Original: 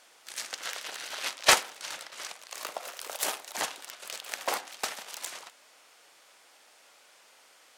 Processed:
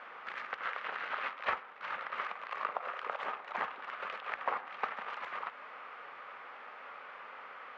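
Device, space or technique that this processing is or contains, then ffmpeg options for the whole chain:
bass amplifier: -af "acompressor=threshold=0.00562:ratio=5,highpass=72,equalizer=f=75:t=q:w=4:g=6,equalizer=f=120:t=q:w=4:g=-9,equalizer=f=320:t=q:w=4:g=-9,equalizer=f=660:t=q:w=4:g=-4,equalizer=f=1200:t=q:w=4:g=8,lowpass=f=2200:w=0.5412,lowpass=f=2200:w=1.3066,highshelf=f=10000:g=8.5,volume=3.98"

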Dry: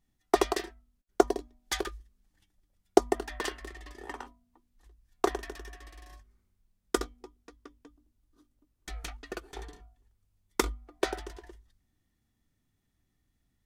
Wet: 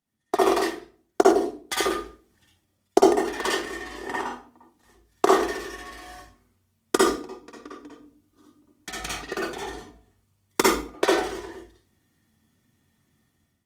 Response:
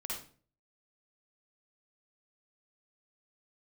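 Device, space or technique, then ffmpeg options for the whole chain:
far-field microphone of a smart speaker: -filter_complex "[1:a]atrim=start_sample=2205[s0];[0:a][s0]afir=irnorm=-1:irlink=0,highpass=f=89:w=0.5412,highpass=f=89:w=1.3066,dynaudnorm=f=170:g=5:m=3.76" -ar 48000 -c:a libopus -b:a 32k

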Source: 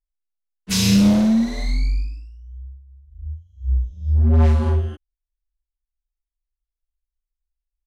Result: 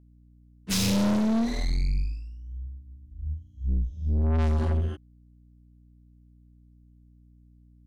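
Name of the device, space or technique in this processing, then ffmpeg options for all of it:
valve amplifier with mains hum: -af "aeval=exprs='(tanh(12.6*val(0)+0.35)-tanh(0.35))/12.6':c=same,aeval=exprs='val(0)+0.002*(sin(2*PI*60*n/s)+sin(2*PI*2*60*n/s)/2+sin(2*PI*3*60*n/s)/3+sin(2*PI*4*60*n/s)/4+sin(2*PI*5*60*n/s)/5)':c=same"

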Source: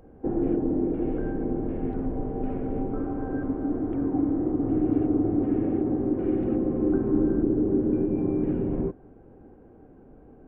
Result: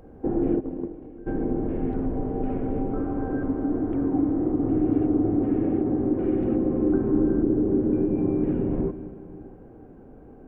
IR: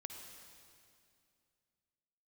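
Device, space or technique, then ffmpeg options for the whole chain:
ducked reverb: -filter_complex "[0:a]asplit=3[s0][s1][s2];[s0]afade=t=out:st=0.59:d=0.02[s3];[s1]agate=range=0.0794:threshold=0.0794:ratio=16:detection=peak,afade=t=in:st=0.59:d=0.02,afade=t=out:st=1.26:d=0.02[s4];[s2]afade=t=in:st=1.26:d=0.02[s5];[s3][s4][s5]amix=inputs=3:normalize=0,asplit=3[s6][s7][s8];[1:a]atrim=start_sample=2205[s9];[s7][s9]afir=irnorm=-1:irlink=0[s10];[s8]apad=whole_len=462032[s11];[s10][s11]sidechaincompress=threshold=0.0316:ratio=8:attack=16:release=116,volume=0.891[s12];[s6][s12]amix=inputs=2:normalize=0"

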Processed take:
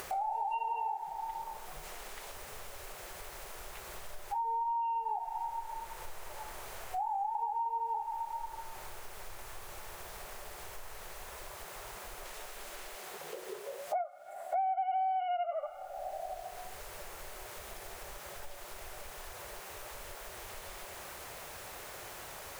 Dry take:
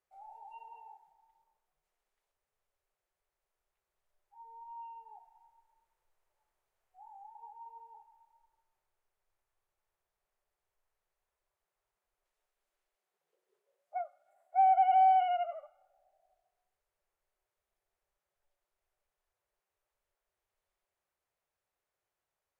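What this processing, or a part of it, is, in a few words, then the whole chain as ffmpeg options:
upward and downward compression: -af "acompressor=mode=upward:threshold=0.0398:ratio=2.5,acompressor=threshold=0.01:ratio=8,volume=2.82"

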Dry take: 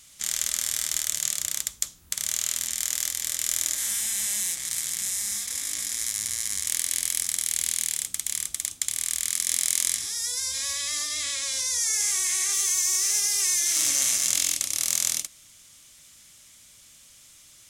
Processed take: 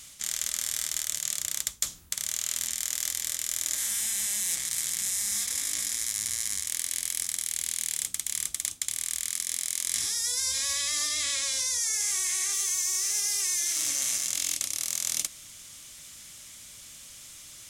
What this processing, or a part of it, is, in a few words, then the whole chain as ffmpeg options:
compression on the reversed sound: -af "areverse,acompressor=threshold=0.0282:ratio=6,areverse,volume=1.88"

